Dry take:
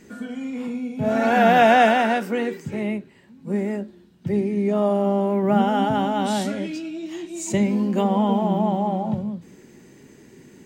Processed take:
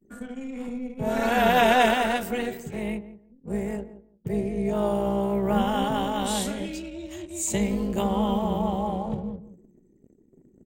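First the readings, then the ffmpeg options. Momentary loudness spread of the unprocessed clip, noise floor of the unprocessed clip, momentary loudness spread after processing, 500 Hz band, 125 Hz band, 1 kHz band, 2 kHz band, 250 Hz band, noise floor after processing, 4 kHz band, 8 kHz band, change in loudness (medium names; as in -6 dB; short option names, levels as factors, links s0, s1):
16 LU, -50 dBFS, 16 LU, -4.5 dB, -4.5 dB, -5.0 dB, -3.5 dB, -5.0 dB, -60 dBFS, +0.5 dB, +3.5 dB, -4.5 dB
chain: -filter_complex "[0:a]tremolo=f=260:d=0.667,adynamicequalizer=threshold=0.00501:dfrequency=3700:dqfactor=1.3:tfrequency=3700:tqfactor=1.3:attack=5:release=100:ratio=0.375:range=3.5:mode=boostabove:tftype=bell,acrossover=split=280|2900[s0][s1][s2];[s2]aexciter=amount=2.2:drive=8.8:freq=7000[s3];[s0][s1][s3]amix=inputs=3:normalize=0,anlmdn=0.0631,asplit=2[s4][s5];[s5]adelay=171,lowpass=f=870:p=1,volume=0.224,asplit=2[s6][s7];[s7]adelay=171,lowpass=f=870:p=1,volume=0.21[s8];[s4][s6][s8]amix=inputs=3:normalize=0,volume=0.794"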